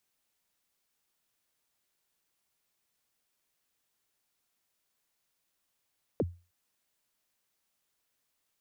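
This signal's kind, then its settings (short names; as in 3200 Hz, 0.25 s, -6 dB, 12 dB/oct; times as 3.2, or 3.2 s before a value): kick drum length 0.31 s, from 590 Hz, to 87 Hz, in 39 ms, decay 0.31 s, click off, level -22 dB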